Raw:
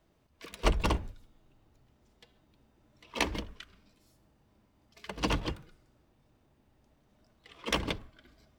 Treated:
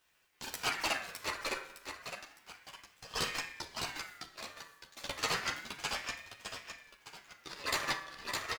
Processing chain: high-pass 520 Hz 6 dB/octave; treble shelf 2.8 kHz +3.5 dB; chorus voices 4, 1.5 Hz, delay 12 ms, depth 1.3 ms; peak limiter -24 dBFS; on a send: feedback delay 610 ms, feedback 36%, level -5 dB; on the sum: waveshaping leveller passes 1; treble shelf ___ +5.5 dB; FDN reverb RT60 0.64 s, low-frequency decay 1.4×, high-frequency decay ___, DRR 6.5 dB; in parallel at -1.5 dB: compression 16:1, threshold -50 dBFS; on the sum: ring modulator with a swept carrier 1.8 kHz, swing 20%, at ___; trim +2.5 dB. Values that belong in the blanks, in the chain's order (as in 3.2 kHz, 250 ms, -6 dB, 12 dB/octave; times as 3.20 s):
7.3 kHz, 0.7×, 0.31 Hz